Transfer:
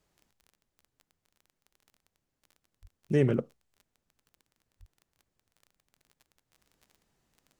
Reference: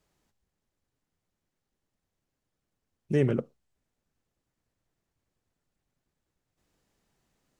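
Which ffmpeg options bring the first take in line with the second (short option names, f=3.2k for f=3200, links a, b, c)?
-filter_complex "[0:a]adeclick=t=4,asplit=3[a][b][c];[a]afade=t=out:st=2.81:d=0.02[d];[b]highpass=f=140:w=0.5412,highpass=f=140:w=1.3066,afade=t=in:st=2.81:d=0.02,afade=t=out:st=2.93:d=0.02[e];[c]afade=t=in:st=2.93:d=0.02[f];[d][e][f]amix=inputs=3:normalize=0,asplit=3[g][h][i];[g]afade=t=out:st=4.79:d=0.02[j];[h]highpass=f=140:w=0.5412,highpass=f=140:w=1.3066,afade=t=in:st=4.79:d=0.02,afade=t=out:st=4.91:d=0.02[k];[i]afade=t=in:st=4.91:d=0.02[l];[j][k][l]amix=inputs=3:normalize=0"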